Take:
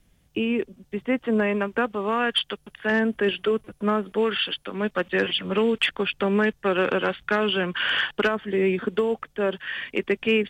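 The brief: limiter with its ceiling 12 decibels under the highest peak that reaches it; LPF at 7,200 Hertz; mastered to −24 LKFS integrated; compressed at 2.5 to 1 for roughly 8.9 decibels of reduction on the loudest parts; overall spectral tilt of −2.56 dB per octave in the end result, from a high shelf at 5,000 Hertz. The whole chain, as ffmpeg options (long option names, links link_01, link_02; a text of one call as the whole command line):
ffmpeg -i in.wav -af "lowpass=7200,highshelf=frequency=5000:gain=6.5,acompressor=threshold=-31dB:ratio=2.5,volume=14dB,alimiter=limit=-15.5dB:level=0:latency=1" out.wav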